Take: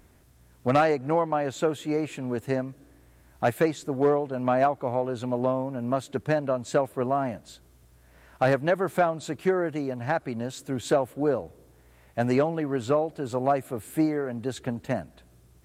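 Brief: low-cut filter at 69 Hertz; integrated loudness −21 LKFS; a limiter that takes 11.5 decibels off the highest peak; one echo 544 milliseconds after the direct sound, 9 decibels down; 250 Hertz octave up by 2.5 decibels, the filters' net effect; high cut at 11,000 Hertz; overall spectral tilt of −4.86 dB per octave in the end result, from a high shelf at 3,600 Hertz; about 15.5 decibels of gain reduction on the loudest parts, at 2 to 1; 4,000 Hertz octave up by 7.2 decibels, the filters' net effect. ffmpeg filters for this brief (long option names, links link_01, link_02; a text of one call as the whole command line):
ffmpeg -i in.wav -af "highpass=69,lowpass=11000,equalizer=frequency=250:width_type=o:gain=3,highshelf=frequency=3600:gain=5,equalizer=frequency=4000:width_type=o:gain=5.5,acompressor=threshold=-46dB:ratio=2,alimiter=level_in=10dB:limit=-24dB:level=0:latency=1,volume=-10dB,aecho=1:1:544:0.355,volume=23dB" out.wav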